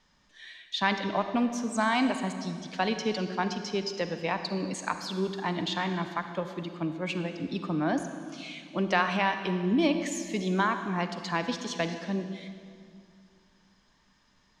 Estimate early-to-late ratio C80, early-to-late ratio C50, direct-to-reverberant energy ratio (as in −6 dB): 9.0 dB, 8.0 dB, 7.5 dB